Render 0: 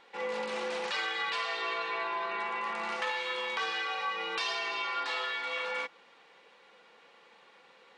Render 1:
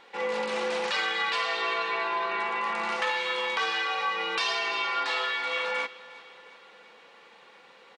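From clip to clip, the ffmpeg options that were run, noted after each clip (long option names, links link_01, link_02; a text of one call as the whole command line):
ffmpeg -i in.wav -af "aecho=1:1:357|714|1071|1428|1785:0.106|0.0604|0.0344|0.0196|0.0112,volume=5dB" out.wav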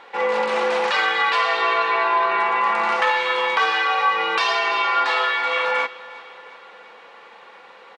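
ffmpeg -i in.wav -af "equalizer=frequency=960:width_type=o:width=3:gain=10,volume=1dB" out.wav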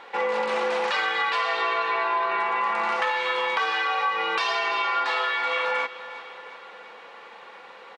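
ffmpeg -i in.wav -af "acompressor=threshold=-24dB:ratio=2.5" out.wav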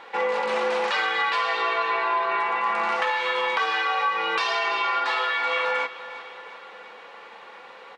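ffmpeg -i in.wav -af "flanger=delay=6.2:depth=3.6:regen=-76:speed=0.36:shape=sinusoidal,volume=5dB" out.wav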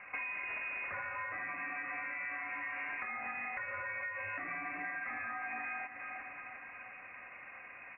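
ffmpeg -i in.wav -af "lowpass=frequency=2600:width_type=q:width=0.5098,lowpass=frequency=2600:width_type=q:width=0.6013,lowpass=frequency=2600:width_type=q:width=0.9,lowpass=frequency=2600:width_type=q:width=2.563,afreqshift=-3000,bandreject=frequency=165:width_type=h:width=4,bandreject=frequency=330:width_type=h:width=4,bandreject=frequency=495:width_type=h:width=4,bandreject=frequency=660:width_type=h:width=4,bandreject=frequency=825:width_type=h:width=4,bandreject=frequency=990:width_type=h:width=4,bandreject=frequency=1155:width_type=h:width=4,bandreject=frequency=1320:width_type=h:width=4,bandreject=frequency=1485:width_type=h:width=4,bandreject=frequency=1650:width_type=h:width=4,bandreject=frequency=1815:width_type=h:width=4,bandreject=frequency=1980:width_type=h:width=4,bandreject=frequency=2145:width_type=h:width=4,bandreject=frequency=2310:width_type=h:width=4,bandreject=frequency=2475:width_type=h:width=4,bandreject=frequency=2640:width_type=h:width=4,bandreject=frequency=2805:width_type=h:width=4,bandreject=frequency=2970:width_type=h:width=4,bandreject=frequency=3135:width_type=h:width=4,bandreject=frequency=3300:width_type=h:width=4,bandreject=frequency=3465:width_type=h:width=4,bandreject=frequency=3630:width_type=h:width=4,bandreject=frequency=3795:width_type=h:width=4,bandreject=frequency=3960:width_type=h:width=4,bandreject=frequency=4125:width_type=h:width=4,bandreject=frequency=4290:width_type=h:width=4,bandreject=frequency=4455:width_type=h:width=4,bandreject=frequency=4620:width_type=h:width=4,bandreject=frequency=4785:width_type=h:width=4,bandreject=frequency=4950:width_type=h:width=4,bandreject=frequency=5115:width_type=h:width=4,bandreject=frequency=5280:width_type=h:width=4,bandreject=frequency=5445:width_type=h:width=4,bandreject=frequency=5610:width_type=h:width=4,bandreject=frequency=5775:width_type=h:width=4,acompressor=threshold=-31dB:ratio=12,volume=-6dB" out.wav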